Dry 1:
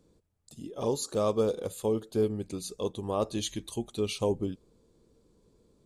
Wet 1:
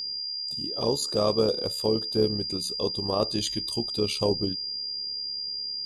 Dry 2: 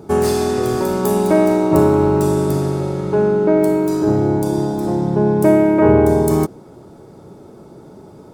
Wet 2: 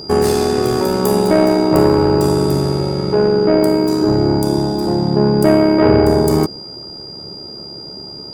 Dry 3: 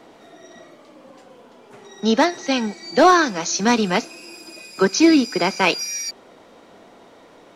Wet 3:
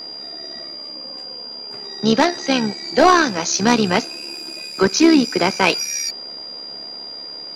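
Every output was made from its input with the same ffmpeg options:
-af "acontrast=61,aeval=exprs='val(0)+0.0447*sin(2*PI*4800*n/s)':c=same,tremolo=f=70:d=0.519,volume=-1dB"

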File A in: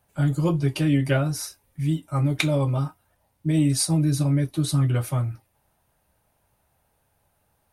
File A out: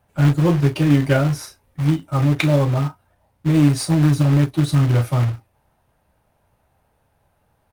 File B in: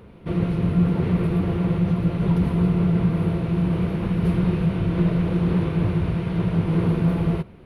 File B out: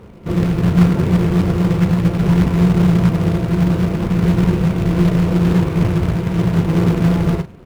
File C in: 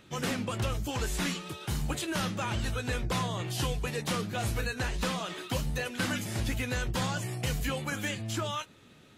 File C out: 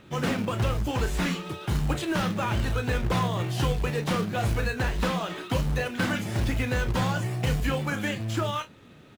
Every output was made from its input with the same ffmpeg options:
-filter_complex "[0:a]asplit=2[a][b];[b]adelay=34,volume=-11dB[c];[a][c]amix=inputs=2:normalize=0,acrusher=bits=3:mode=log:mix=0:aa=0.000001,highshelf=f=3.7k:g=-11.5,volume=5.5dB"

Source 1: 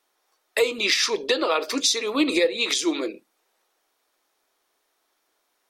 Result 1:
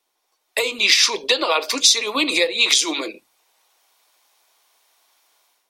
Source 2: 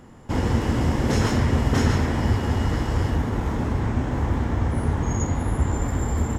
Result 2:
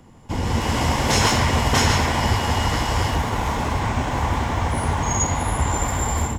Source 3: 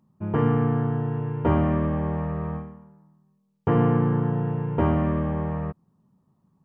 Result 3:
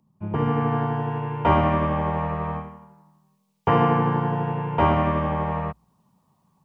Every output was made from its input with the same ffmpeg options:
-filter_complex "[0:a]equalizer=f=1.7k:w=4.3:g=-7,bandreject=f=1.3k:w=7.9,bandreject=f=58.6:t=h:w=4,bandreject=f=117.2:t=h:w=4,acrossover=split=250|670[a][b][c];[b]tremolo=f=12:d=0.96[d];[c]dynaudnorm=f=390:g=3:m=12dB[e];[a][d][e]amix=inputs=3:normalize=0"

